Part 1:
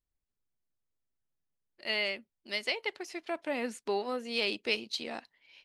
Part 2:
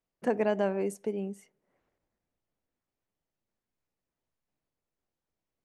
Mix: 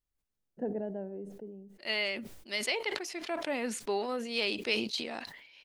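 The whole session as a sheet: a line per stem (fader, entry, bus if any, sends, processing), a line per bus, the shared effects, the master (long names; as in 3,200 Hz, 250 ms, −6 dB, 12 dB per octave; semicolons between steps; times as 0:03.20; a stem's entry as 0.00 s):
−0.5 dB, 0.00 s, no send, no processing
−5.0 dB, 0.35 s, no send, moving average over 38 samples; automatic ducking −10 dB, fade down 1.15 s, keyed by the first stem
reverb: not used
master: level that may fall only so fast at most 61 dB per second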